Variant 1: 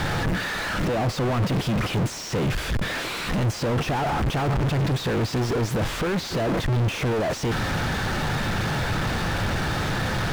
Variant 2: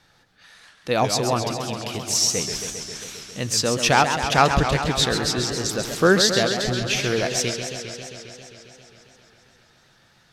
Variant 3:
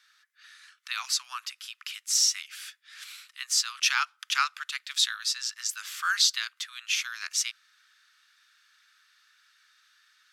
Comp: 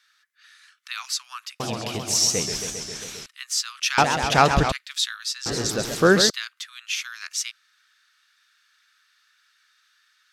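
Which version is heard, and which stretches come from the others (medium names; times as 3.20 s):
3
1.60–3.26 s: from 2
3.98–4.72 s: from 2
5.46–6.30 s: from 2
not used: 1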